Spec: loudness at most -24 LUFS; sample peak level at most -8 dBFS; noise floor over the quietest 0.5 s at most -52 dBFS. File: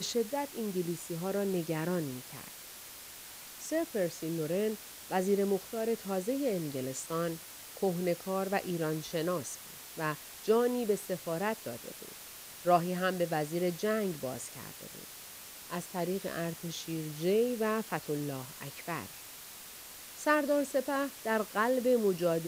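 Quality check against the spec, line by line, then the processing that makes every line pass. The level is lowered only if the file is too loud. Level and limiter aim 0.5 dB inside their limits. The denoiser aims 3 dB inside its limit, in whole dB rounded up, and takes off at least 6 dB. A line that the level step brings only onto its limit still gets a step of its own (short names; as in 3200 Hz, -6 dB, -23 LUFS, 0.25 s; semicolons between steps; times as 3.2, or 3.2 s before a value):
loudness -33.5 LUFS: OK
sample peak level -12.5 dBFS: OK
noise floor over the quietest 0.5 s -48 dBFS: fail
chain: denoiser 7 dB, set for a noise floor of -48 dBFS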